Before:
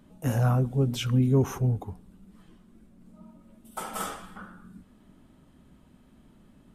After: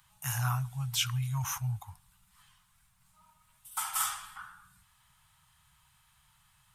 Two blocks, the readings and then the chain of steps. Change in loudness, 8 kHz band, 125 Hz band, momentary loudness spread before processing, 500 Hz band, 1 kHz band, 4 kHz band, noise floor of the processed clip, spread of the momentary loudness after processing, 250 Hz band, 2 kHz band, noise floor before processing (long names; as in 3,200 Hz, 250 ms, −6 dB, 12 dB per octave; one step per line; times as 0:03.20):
−6.5 dB, +7.5 dB, −8.5 dB, 19 LU, −29.0 dB, −2.0 dB, +4.0 dB, −68 dBFS, 16 LU, below −15 dB, +1.0 dB, −58 dBFS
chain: elliptic band-stop filter 130–900 Hz, stop band 60 dB
spectral tilt +2.5 dB per octave